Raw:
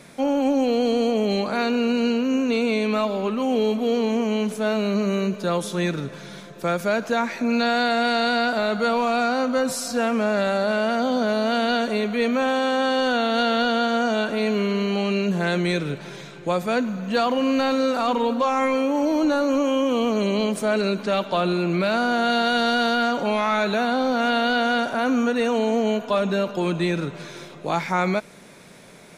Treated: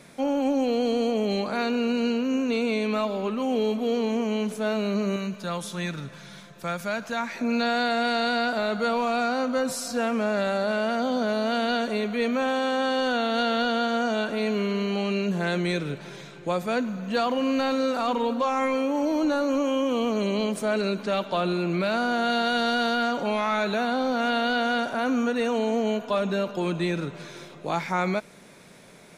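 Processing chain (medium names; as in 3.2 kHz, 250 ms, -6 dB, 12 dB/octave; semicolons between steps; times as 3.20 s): 5.16–7.35 s: peaking EQ 390 Hz -9 dB 1.3 oct; trim -3.5 dB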